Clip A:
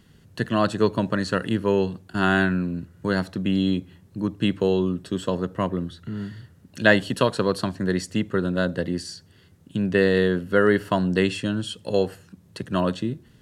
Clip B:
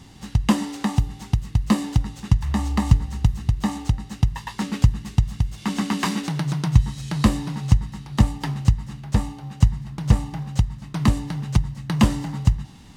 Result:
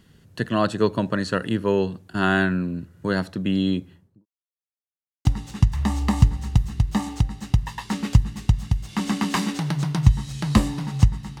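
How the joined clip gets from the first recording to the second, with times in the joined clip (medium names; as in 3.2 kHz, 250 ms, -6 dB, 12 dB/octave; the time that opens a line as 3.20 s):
clip A
3.80–4.26 s: studio fade out
4.26–5.25 s: mute
5.25 s: go over to clip B from 1.94 s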